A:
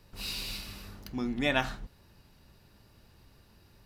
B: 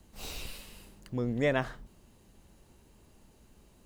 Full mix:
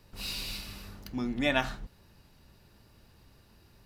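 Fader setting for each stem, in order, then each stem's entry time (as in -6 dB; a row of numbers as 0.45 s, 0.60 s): 0.0 dB, -12.5 dB; 0.00 s, 0.00 s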